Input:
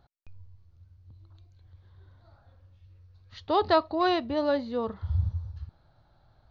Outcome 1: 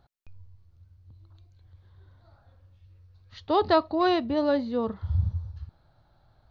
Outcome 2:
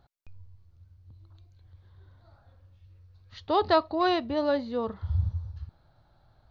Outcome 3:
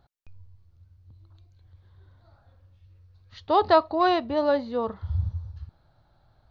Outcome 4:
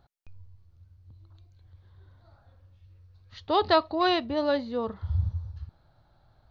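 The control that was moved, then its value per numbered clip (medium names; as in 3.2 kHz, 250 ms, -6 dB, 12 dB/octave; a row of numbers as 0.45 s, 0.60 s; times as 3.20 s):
dynamic bell, frequency: 210 Hz, 9.7 kHz, 840 Hz, 3.2 kHz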